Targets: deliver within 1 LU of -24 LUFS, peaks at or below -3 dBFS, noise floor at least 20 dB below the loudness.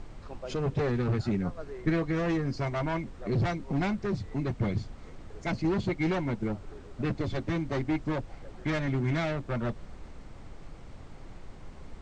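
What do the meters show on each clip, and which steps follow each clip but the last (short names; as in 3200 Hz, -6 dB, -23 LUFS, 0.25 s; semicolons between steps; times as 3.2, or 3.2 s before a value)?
noise floor -47 dBFS; noise floor target -51 dBFS; loudness -31.0 LUFS; peak -16.5 dBFS; loudness target -24.0 LUFS
-> noise print and reduce 6 dB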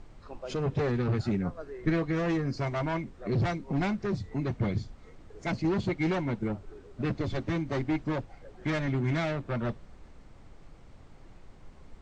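noise floor -53 dBFS; loudness -31.0 LUFS; peak -16.5 dBFS; loudness target -24.0 LUFS
-> gain +7 dB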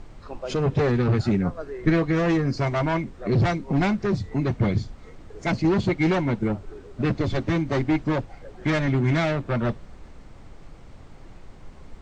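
loudness -24.0 LUFS; peak -9.5 dBFS; noise floor -46 dBFS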